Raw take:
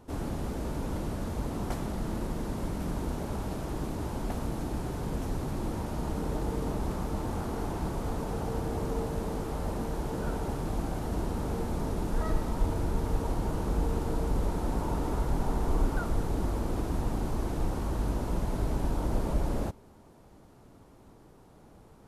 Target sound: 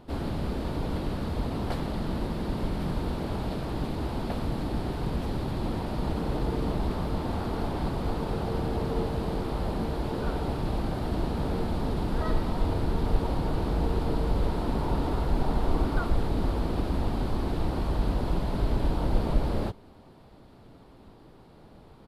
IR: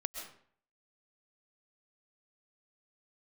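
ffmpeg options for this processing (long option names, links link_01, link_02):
-filter_complex "[0:a]highshelf=frequency=5300:width_type=q:width=3:gain=-6,asplit=2[link_01][link_02];[link_02]asetrate=35002,aresample=44100,atempo=1.25992,volume=-5dB[link_03];[link_01][link_03]amix=inputs=2:normalize=0,volume=2dB"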